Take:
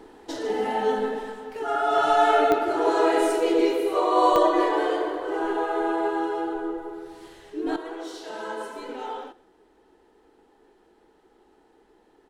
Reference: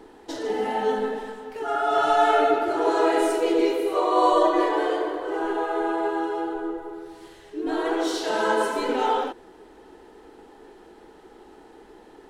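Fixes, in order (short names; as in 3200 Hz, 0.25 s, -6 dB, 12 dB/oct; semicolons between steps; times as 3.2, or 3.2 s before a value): de-click; inverse comb 0.13 s -21.5 dB; gain 0 dB, from 7.76 s +11 dB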